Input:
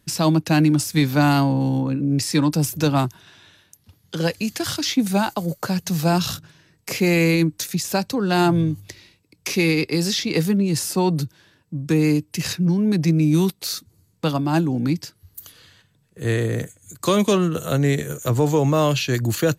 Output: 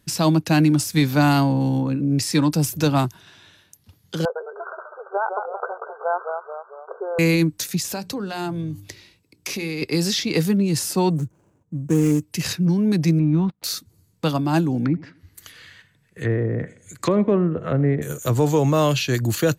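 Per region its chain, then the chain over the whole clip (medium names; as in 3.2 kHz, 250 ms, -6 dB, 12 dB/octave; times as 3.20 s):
4.25–7.19 s: ever faster or slower copies 106 ms, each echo -1 st, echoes 3, each echo -6 dB + brick-wall FIR band-pass 380–1600 Hz
7.89–9.82 s: compression 5:1, threshold -24 dBFS + hum notches 60/120/180/240/300/360/420 Hz
11.10–12.23 s: median filter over 25 samples + resonant high shelf 5.4 kHz +8 dB, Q 3 + tape noise reduction on one side only decoder only
13.19–13.64 s: companding laws mixed up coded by A + low-pass 1.3 kHz + peaking EQ 400 Hz -15 dB 0.26 oct
14.85–18.02 s: low-pass that closes with the level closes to 710 Hz, closed at -19 dBFS + peaking EQ 2 kHz +11.5 dB 0.84 oct + tape echo 82 ms, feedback 45%, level -18.5 dB, low-pass 2.3 kHz
whole clip: none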